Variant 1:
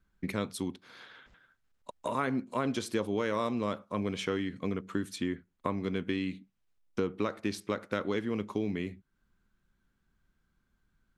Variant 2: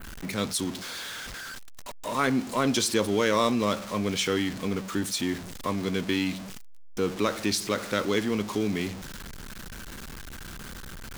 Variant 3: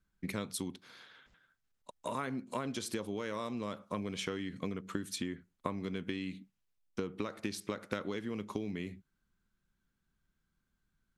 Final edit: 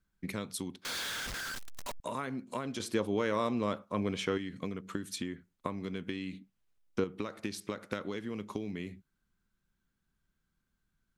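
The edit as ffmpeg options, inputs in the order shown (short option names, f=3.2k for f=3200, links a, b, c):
-filter_complex "[0:a]asplit=2[a][b];[2:a]asplit=4[c][d][e][f];[c]atrim=end=0.852[g];[1:a]atrim=start=0.848:end=2.002[h];[d]atrim=start=1.998:end=2.802[i];[a]atrim=start=2.798:end=4.382[j];[e]atrim=start=4.378:end=6.332[k];[b]atrim=start=6.328:end=7.042[l];[f]atrim=start=7.038[m];[g][h]acrossfade=d=0.004:c1=hsin:c2=hsin[n];[n][i]acrossfade=d=0.004:c1=hsin:c2=hsin[o];[o][j]acrossfade=d=0.004:c1=hsin:c2=hsin[p];[p][k]acrossfade=d=0.004:c1=hsin:c2=hsin[q];[q][l]acrossfade=d=0.004:c1=hsin:c2=hsin[r];[r][m]acrossfade=d=0.004:c1=hsin:c2=hsin"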